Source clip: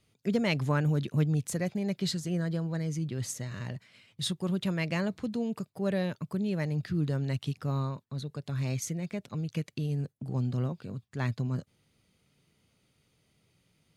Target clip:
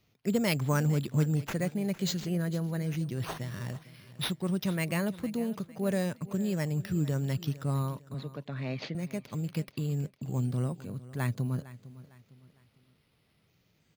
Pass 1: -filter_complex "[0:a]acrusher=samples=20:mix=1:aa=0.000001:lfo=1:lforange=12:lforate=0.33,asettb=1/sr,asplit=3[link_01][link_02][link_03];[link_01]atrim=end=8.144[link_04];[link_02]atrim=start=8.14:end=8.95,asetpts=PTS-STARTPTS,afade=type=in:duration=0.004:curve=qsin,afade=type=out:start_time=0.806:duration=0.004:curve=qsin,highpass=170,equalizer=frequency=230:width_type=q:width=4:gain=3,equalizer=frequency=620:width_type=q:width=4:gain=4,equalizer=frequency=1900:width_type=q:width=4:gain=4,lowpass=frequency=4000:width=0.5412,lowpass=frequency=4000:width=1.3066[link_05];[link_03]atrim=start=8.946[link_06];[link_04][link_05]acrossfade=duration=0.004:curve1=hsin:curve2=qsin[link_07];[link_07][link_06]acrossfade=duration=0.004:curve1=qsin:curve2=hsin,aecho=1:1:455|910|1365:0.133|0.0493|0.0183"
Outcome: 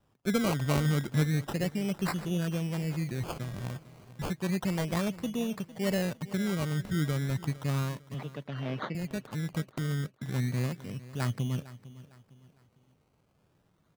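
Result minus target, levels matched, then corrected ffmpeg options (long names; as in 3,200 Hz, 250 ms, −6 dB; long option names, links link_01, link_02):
sample-and-hold swept by an LFO: distortion +7 dB
-filter_complex "[0:a]acrusher=samples=5:mix=1:aa=0.000001:lfo=1:lforange=3:lforate=0.33,asettb=1/sr,asplit=3[link_01][link_02][link_03];[link_01]atrim=end=8.144[link_04];[link_02]atrim=start=8.14:end=8.95,asetpts=PTS-STARTPTS,afade=type=in:duration=0.004:curve=qsin,afade=type=out:start_time=0.806:duration=0.004:curve=qsin,highpass=170,equalizer=frequency=230:width_type=q:width=4:gain=3,equalizer=frequency=620:width_type=q:width=4:gain=4,equalizer=frequency=1900:width_type=q:width=4:gain=4,lowpass=frequency=4000:width=0.5412,lowpass=frequency=4000:width=1.3066[link_05];[link_03]atrim=start=8.946[link_06];[link_04][link_05]acrossfade=duration=0.004:curve1=hsin:curve2=qsin[link_07];[link_07][link_06]acrossfade=duration=0.004:curve1=qsin:curve2=hsin,aecho=1:1:455|910|1365:0.133|0.0493|0.0183"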